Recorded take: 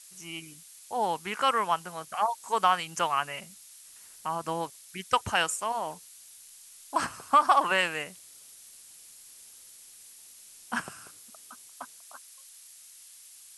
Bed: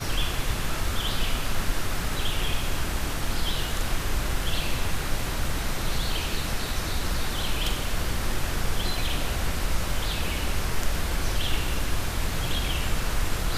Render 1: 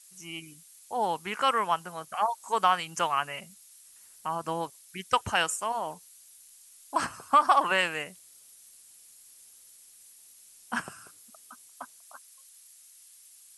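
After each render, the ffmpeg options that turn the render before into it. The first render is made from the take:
-af "afftdn=nr=6:nf=-52"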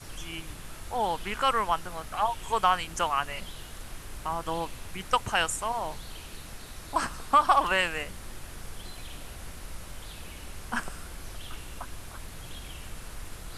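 -filter_complex "[1:a]volume=0.178[s0];[0:a][s0]amix=inputs=2:normalize=0"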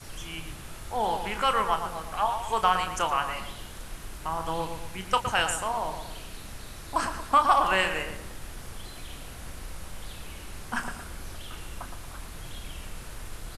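-filter_complex "[0:a]asplit=2[s0][s1];[s1]adelay=32,volume=0.316[s2];[s0][s2]amix=inputs=2:normalize=0,asplit=2[s3][s4];[s4]adelay=115,lowpass=f=2000:p=1,volume=0.447,asplit=2[s5][s6];[s6]adelay=115,lowpass=f=2000:p=1,volume=0.47,asplit=2[s7][s8];[s8]adelay=115,lowpass=f=2000:p=1,volume=0.47,asplit=2[s9][s10];[s10]adelay=115,lowpass=f=2000:p=1,volume=0.47,asplit=2[s11][s12];[s12]adelay=115,lowpass=f=2000:p=1,volume=0.47,asplit=2[s13][s14];[s14]adelay=115,lowpass=f=2000:p=1,volume=0.47[s15];[s3][s5][s7][s9][s11][s13][s15]amix=inputs=7:normalize=0"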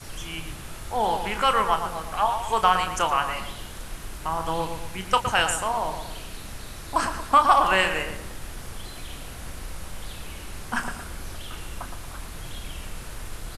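-af "volume=1.5"

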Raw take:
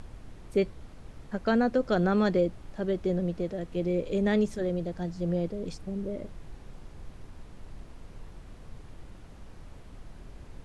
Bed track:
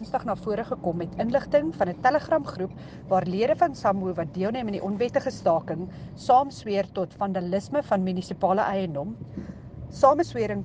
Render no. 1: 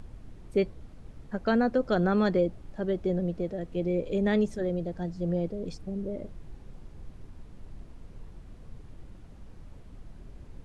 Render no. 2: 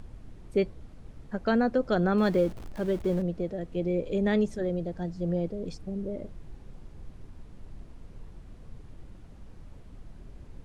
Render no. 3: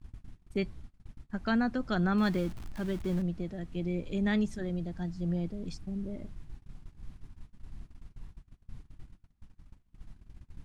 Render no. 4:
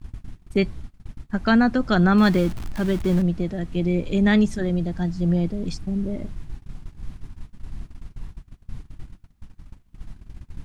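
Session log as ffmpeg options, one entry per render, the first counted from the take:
-af "afftdn=nr=6:nf=-49"
-filter_complex "[0:a]asettb=1/sr,asplit=3[s0][s1][s2];[s0]atrim=end=2.184[s3];[s1]atrim=start=2.18:end=3.22,asetpts=PTS-STARTPTS,afade=t=in:d=0.004:c=qsin,afade=t=out:st=1.036:d=0.004:c=qsin,aeval=exprs='val(0)+0.5*0.01*sgn(val(0))':c=same[s4];[s2]atrim=start=3.216[s5];[s3][s4]acrossfade=d=0.004:c1=hsin:c2=qsin[s6];[s6][s5]acrossfade=d=0.004:c1=qsin:c2=hsin"
-af "agate=range=0.0501:threshold=0.00794:ratio=16:detection=peak,equalizer=f=500:t=o:w=0.96:g=-13.5"
-af "volume=3.55"

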